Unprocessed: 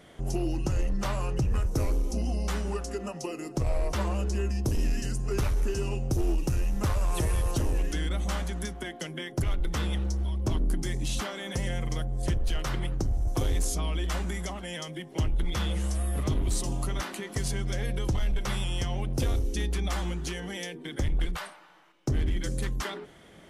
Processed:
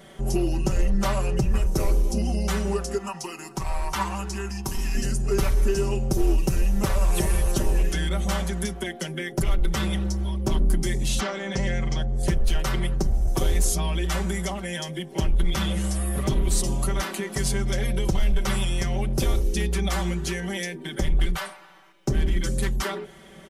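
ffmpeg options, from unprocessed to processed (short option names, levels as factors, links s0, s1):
-filter_complex "[0:a]asettb=1/sr,asplit=3[s0][s1][s2];[s0]atrim=end=2.984[s3];[s1]atrim=start=2.98:end=4.95,asetpts=PTS-STARTPTS,afade=t=in:d=0.004:c=qsin,afade=t=out:st=1.966:d=0.004:c=qsin,lowshelf=f=720:t=q:w=3:g=-6.5[s4];[s2]atrim=start=4.946[s5];[s3][s4]acrossfade=d=0.004:c1=hsin:c2=qsin[s6];[s6][s5]acrossfade=d=0.004:c1=qsin:c2=hsin,asettb=1/sr,asplit=3[s7][s8][s9];[s7]atrim=end=11.204[s10];[s8]atrim=start=11.2:end=12.16,asetpts=PTS-STARTPTS,afade=t=in:d=0.004:c=qsin,afade=t=out:st=0.956:d=0.004:c=qsin,lowpass=f=6600:w=0.5412,lowpass=f=6600:w=1.3066[s11];[s9]atrim=start=12.156[s12];[s10][s11]acrossfade=d=0.004:c1=hsin:c2=qsin[s13];[s13][s12]acrossfade=d=0.004:c1=qsin:c2=hsin,highshelf=f=11000:g=6,aecho=1:1:5.2:0.82,volume=1.41"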